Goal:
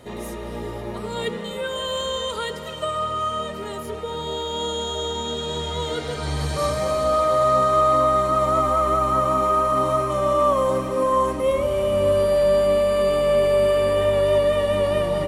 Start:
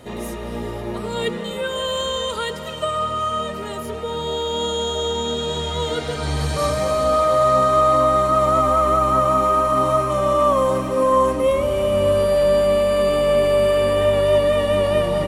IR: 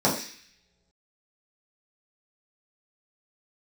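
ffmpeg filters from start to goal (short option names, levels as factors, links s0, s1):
-filter_complex "[0:a]asplit=2[s0][s1];[s1]highpass=f=240:w=0.5412,highpass=f=240:w=1.3066[s2];[1:a]atrim=start_sample=2205,asetrate=22932,aresample=44100[s3];[s2][s3]afir=irnorm=-1:irlink=0,volume=0.0211[s4];[s0][s4]amix=inputs=2:normalize=0,volume=0.708"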